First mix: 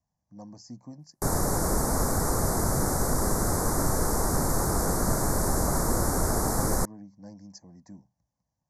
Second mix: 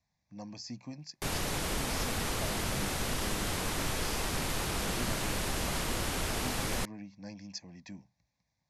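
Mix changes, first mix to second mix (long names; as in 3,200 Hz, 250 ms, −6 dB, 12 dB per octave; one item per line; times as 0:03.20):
background −9.0 dB
master: remove Butterworth band-reject 2,900 Hz, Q 0.57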